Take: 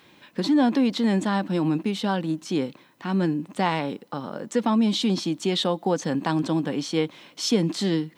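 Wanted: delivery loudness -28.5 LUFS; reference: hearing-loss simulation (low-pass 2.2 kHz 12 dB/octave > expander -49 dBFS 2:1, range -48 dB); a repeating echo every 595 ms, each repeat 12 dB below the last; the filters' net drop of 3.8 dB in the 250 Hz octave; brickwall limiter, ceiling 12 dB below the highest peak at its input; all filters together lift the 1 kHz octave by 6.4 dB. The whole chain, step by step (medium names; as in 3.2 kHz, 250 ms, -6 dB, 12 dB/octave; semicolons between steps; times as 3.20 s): peaking EQ 250 Hz -5.5 dB; peaking EQ 1 kHz +8.5 dB; peak limiter -17 dBFS; low-pass 2.2 kHz 12 dB/octave; feedback delay 595 ms, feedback 25%, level -12 dB; expander -49 dBFS 2:1, range -48 dB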